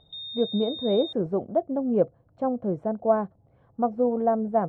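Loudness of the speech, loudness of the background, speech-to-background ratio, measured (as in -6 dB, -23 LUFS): -26.5 LUFS, -35.0 LUFS, 8.5 dB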